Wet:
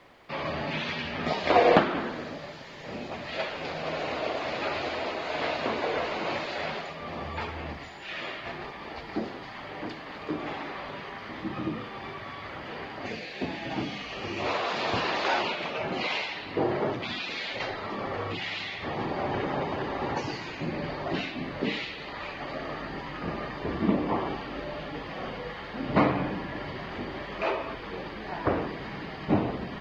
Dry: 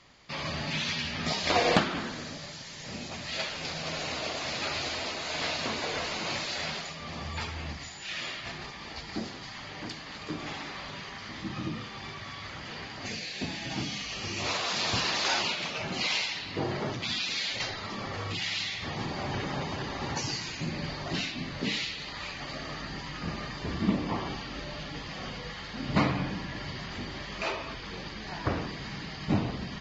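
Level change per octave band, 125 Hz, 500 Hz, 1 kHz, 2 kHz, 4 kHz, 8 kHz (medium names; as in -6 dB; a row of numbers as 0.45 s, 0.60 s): -1.5 dB, +7.0 dB, +5.0 dB, +0.5 dB, -5.0 dB, no reading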